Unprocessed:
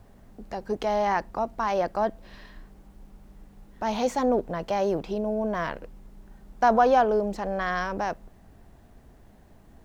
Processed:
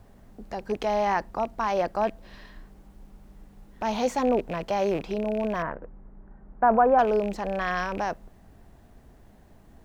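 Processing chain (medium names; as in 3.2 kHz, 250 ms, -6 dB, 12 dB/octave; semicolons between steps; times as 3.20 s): rattle on loud lows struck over -36 dBFS, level -30 dBFS; 5.62–6.99 s: low-pass 1.7 kHz 24 dB/octave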